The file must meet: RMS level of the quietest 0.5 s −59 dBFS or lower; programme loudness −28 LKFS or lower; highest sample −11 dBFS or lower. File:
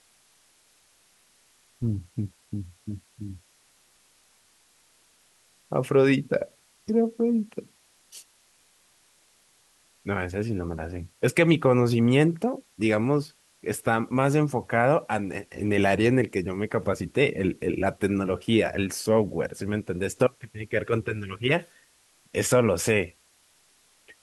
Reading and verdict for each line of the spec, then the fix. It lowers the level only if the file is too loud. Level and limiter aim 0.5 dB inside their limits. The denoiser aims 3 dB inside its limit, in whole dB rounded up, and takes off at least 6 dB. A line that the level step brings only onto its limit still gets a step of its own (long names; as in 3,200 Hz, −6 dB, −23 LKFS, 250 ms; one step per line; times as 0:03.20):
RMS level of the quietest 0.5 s −62 dBFS: in spec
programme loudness −25.5 LKFS: out of spec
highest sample −5.0 dBFS: out of spec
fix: level −3 dB
brickwall limiter −11.5 dBFS